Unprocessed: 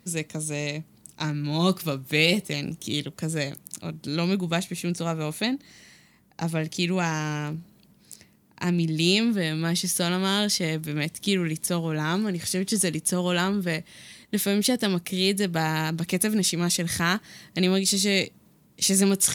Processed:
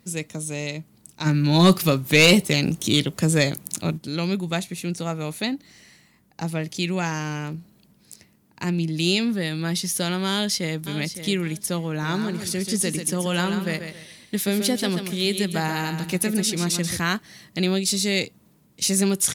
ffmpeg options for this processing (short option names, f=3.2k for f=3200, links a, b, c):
-filter_complex "[0:a]asplit=3[a][b][c];[a]afade=t=out:st=1.25:d=0.02[d];[b]aeval=exprs='0.501*sin(PI/2*1.78*val(0)/0.501)':c=same,afade=t=in:st=1.25:d=0.02,afade=t=out:st=3.97:d=0.02[e];[c]afade=t=in:st=3.97:d=0.02[f];[d][e][f]amix=inputs=3:normalize=0,asplit=2[g][h];[h]afade=t=in:st=10.3:d=0.01,afade=t=out:st=10.85:d=0.01,aecho=0:1:560|1120|1680:0.281838|0.0704596|0.0176149[i];[g][i]amix=inputs=2:normalize=0,asettb=1/sr,asplit=3[j][k][l];[j]atrim=end=11.894[m];[k]atrim=start=11.89:end=16.97,asetpts=PTS-STARTPTS,afade=t=in:d=0.004:c=qsin,afade=t=out:st=5.076:d=0.004:c=qsin,aecho=1:1:136|272|408|544:0.398|0.123|0.0383|0.0119,atrim=end_sample=224028[n];[l]atrim=start=16.966[o];[m][n]acrossfade=d=0.004:c1=hsin:c2=qsin[p];[p][o]acrossfade=d=0.004:c1=qsin:c2=hsin"